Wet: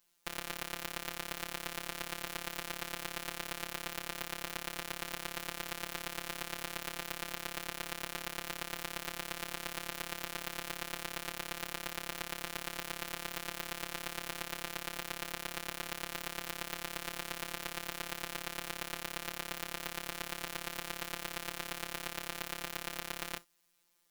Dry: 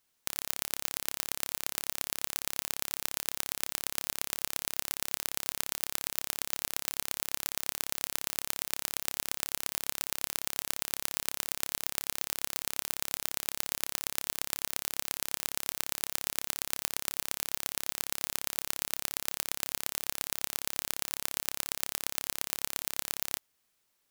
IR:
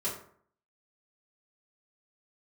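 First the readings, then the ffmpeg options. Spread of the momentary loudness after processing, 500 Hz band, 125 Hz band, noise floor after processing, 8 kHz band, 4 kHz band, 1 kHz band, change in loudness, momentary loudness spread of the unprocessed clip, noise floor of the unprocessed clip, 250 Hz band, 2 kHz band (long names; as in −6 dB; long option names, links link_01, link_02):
0 LU, +2.0 dB, +1.5 dB, −49 dBFS, −10.0 dB, −3.5 dB, +1.5 dB, −6.5 dB, 1 LU, −76 dBFS, +2.5 dB, +1.0 dB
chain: -filter_complex "[0:a]asplit=2[link_01][link_02];[1:a]atrim=start_sample=2205,atrim=end_sample=3087,lowshelf=frequency=65:gain=11.5[link_03];[link_02][link_03]afir=irnorm=-1:irlink=0,volume=-18dB[link_04];[link_01][link_04]amix=inputs=2:normalize=0,afftfilt=real='hypot(re,im)*cos(PI*b)':imag='0':win_size=1024:overlap=0.75,acrossover=split=3600[link_05][link_06];[link_06]acompressor=threshold=-39dB:ratio=4:attack=1:release=60[link_07];[link_05][link_07]amix=inputs=2:normalize=0,volume=4dB"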